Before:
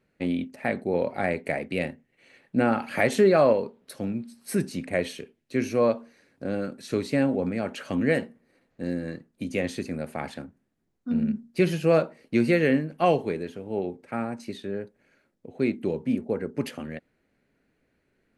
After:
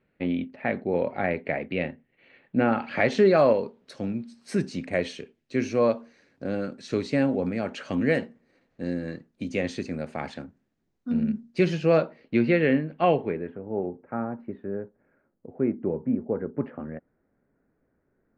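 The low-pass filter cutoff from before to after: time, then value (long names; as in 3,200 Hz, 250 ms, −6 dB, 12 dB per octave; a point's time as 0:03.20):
low-pass filter 24 dB per octave
0:02.62 3,500 Hz
0:03.40 7,000 Hz
0:11.61 7,000 Hz
0:12.43 3,700 Hz
0:13.04 3,700 Hz
0:13.66 1,500 Hz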